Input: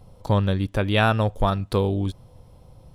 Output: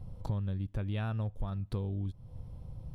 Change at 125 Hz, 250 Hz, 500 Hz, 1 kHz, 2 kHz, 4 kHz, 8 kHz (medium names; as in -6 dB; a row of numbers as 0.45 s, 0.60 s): -10.0 dB, -14.0 dB, -20.5 dB, -22.0 dB, -22.0 dB, -22.5 dB, no reading